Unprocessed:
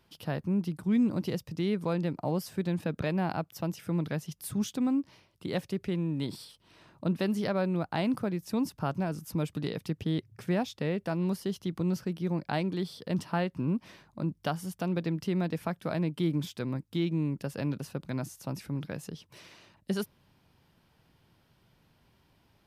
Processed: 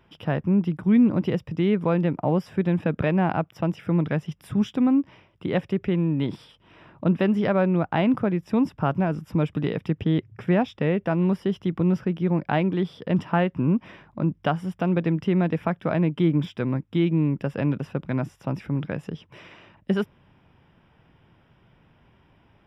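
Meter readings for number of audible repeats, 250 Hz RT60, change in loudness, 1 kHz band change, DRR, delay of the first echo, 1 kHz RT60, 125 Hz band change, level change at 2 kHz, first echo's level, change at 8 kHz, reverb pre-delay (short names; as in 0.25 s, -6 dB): none, none, +8.0 dB, +8.0 dB, none, none, none, +8.0 dB, +7.5 dB, none, under -10 dB, none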